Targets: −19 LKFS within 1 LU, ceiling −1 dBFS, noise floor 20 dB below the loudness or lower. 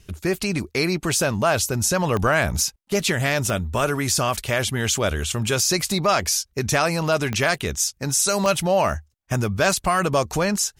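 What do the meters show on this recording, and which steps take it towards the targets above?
number of clicks 4; integrated loudness −21.5 LKFS; sample peak −7.0 dBFS; target loudness −19.0 LKFS
→ click removal
level +2.5 dB

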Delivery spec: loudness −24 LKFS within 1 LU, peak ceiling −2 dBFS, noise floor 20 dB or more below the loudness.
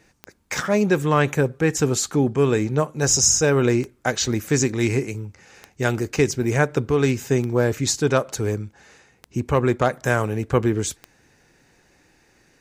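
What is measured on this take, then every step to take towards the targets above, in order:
number of clicks 7; integrated loudness −21.0 LKFS; sample peak −4.0 dBFS; target loudness −24.0 LKFS
→ click removal
level −3 dB

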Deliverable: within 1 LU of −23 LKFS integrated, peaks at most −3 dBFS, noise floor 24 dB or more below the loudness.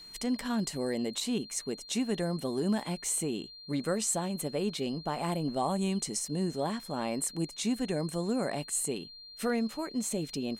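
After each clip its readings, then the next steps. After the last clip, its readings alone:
interfering tone 4,200 Hz; level of the tone −47 dBFS; integrated loudness −32.5 LKFS; sample peak −18.5 dBFS; target loudness −23.0 LKFS
→ notch filter 4,200 Hz, Q 30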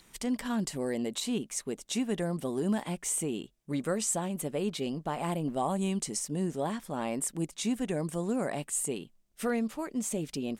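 interfering tone none found; integrated loudness −32.5 LKFS; sample peak −18.5 dBFS; target loudness −23.0 LKFS
→ level +9.5 dB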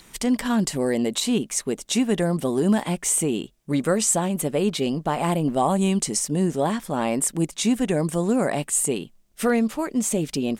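integrated loudness −23.0 LKFS; sample peak −9.0 dBFS; background noise floor −56 dBFS

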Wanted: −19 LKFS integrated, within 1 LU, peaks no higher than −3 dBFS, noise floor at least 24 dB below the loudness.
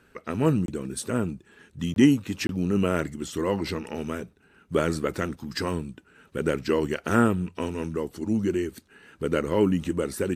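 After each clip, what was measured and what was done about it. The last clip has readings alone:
number of dropouts 3; longest dropout 22 ms; integrated loudness −27.0 LKFS; sample peak −6.0 dBFS; target loudness −19.0 LKFS
→ repair the gap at 0:00.66/0:01.94/0:02.47, 22 ms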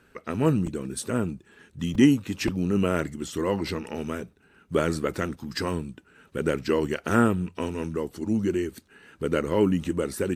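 number of dropouts 0; integrated loudness −27.0 LKFS; sample peak −6.0 dBFS; target loudness −19.0 LKFS
→ level +8 dB
brickwall limiter −3 dBFS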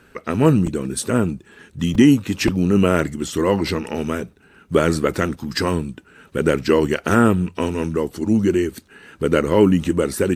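integrated loudness −19.5 LKFS; sample peak −3.0 dBFS; background noise floor −53 dBFS

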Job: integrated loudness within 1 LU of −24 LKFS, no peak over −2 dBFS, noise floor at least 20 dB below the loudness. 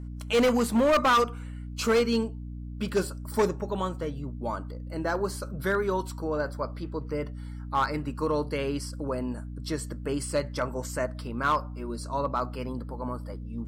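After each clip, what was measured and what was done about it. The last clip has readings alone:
share of clipped samples 1.3%; peaks flattened at −18.0 dBFS; mains hum 60 Hz; hum harmonics up to 300 Hz; level of the hum −35 dBFS; integrated loudness −29.0 LKFS; sample peak −18.0 dBFS; target loudness −24.0 LKFS
→ clipped peaks rebuilt −18 dBFS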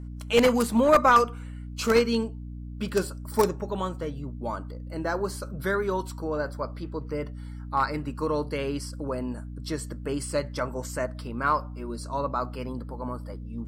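share of clipped samples 0.0%; mains hum 60 Hz; hum harmonics up to 300 Hz; level of the hum −35 dBFS
→ mains-hum notches 60/120/180/240/300 Hz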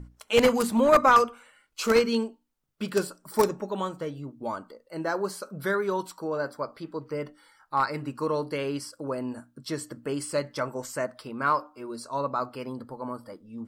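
mains hum none found; integrated loudness −28.0 LKFS; sample peak −7.5 dBFS; target loudness −24.0 LKFS
→ level +4 dB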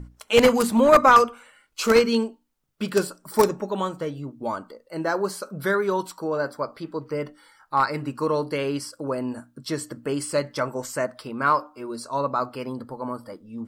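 integrated loudness −24.0 LKFS; sample peak −3.5 dBFS; background noise floor −64 dBFS

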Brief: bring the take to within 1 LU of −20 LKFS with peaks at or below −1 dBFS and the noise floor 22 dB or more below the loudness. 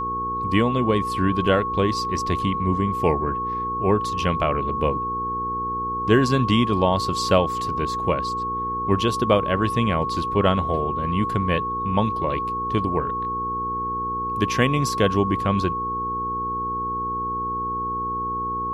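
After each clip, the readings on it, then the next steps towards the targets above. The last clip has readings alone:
mains hum 60 Hz; hum harmonics up to 480 Hz; level of the hum −32 dBFS; interfering tone 1,100 Hz; level of the tone −24 dBFS; integrated loudness −23.0 LKFS; sample peak −5.0 dBFS; target loudness −20.0 LKFS
→ hum removal 60 Hz, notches 8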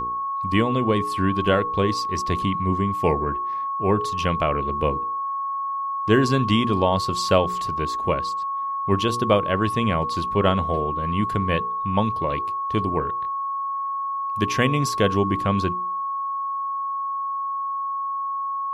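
mains hum none found; interfering tone 1,100 Hz; level of the tone −24 dBFS
→ notch filter 1,100 Hz, Q 30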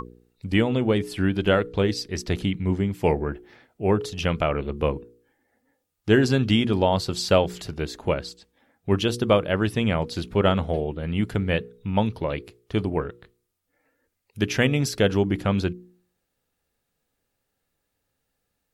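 interfering tone none found; integrated loudness −24.0 LKFS; sample peak −5.5 dBFS; target loudness −20.0 LKFS
→ level +4 dB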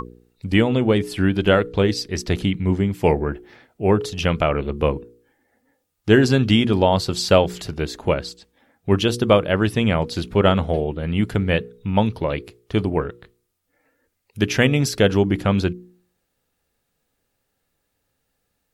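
integrated loudness −20.0 LKFS; sample peak −1.5 dBFS; background noise floor −74 dBFS

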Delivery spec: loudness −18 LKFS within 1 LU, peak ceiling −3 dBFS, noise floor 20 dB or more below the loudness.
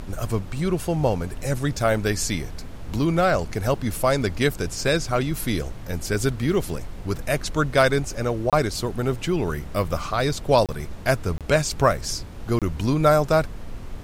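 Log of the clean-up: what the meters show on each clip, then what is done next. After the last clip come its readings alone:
number of dropouts 4; longest dropout 27 ms; background noise floor −36 dBFS; target noise floor −44 dBFS; integrated loudness −23.5 LKFS; sample peak −4.5 dBFS; target loudness −18.0 LKFS
→ repair the gap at 0:08.50/0:10.66/0:11.38/0:12.59, 27 ms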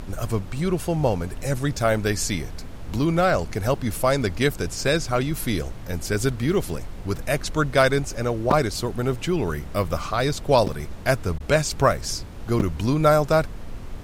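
number of dropouts 0; background noise floor −36 dBFS; target noise floor −44 dBFS
→ noise reduction from a noise print 8 dB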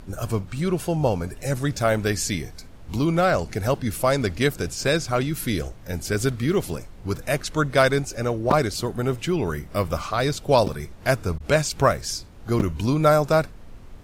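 background noise floor −42 dBFS; target noise floor −44 dBFS
→ noise reduction from a noise print 6 dB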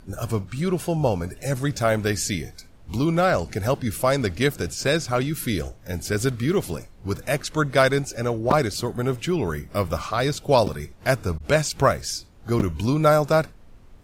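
background noise floor −48 dBFS; integrated loudness −23.5 LKFS; sample peak −4.0 dBFS; target loudness −18.0 LKFS
→ level +5.5 dB
brickwall limiter −3 dBFS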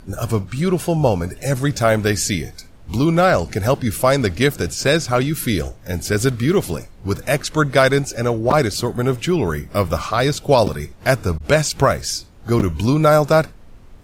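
integrated loudness −18.5 LKFS; sample peak −3.0 dBFS; background noise floor −42 dBFS

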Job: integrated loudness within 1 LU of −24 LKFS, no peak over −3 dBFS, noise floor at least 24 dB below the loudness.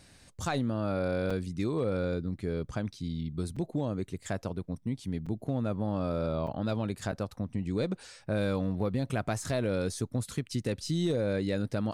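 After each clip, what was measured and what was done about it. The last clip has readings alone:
share of clipped samples 0.2%; peaks flattened at −21.5 dBFS; number of dropouts 5; longest dropout 5.0 ms; integrated loudness −32.5 LKFS; sample peak −21.5 dBFS; target loudness −24.0 LKFS
→ clipped peaks rebuilt −21.5 dBFS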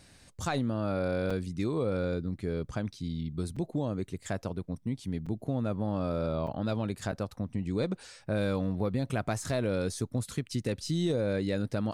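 share of clipped samples 0.0%; number of dropouts 5; longest dropout 5.0 ms
→ repair the gap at 0:01.30/0:03.56/0:05.26/0:06.47/0:07.12, 5 ms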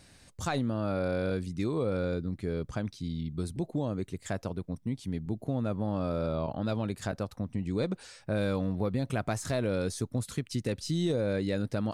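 number of dropouts 0; integrated loudness −32.5 LKFS; sample peak −19.0 dBFS; target loudness −24.0 LKFS
→ level +8.5 dB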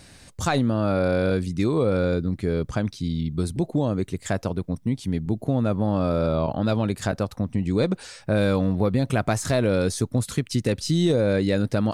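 integrated loudness −24.0 LKFS; sample peak −10.5 dBFS; background noise floor −51 dBFS

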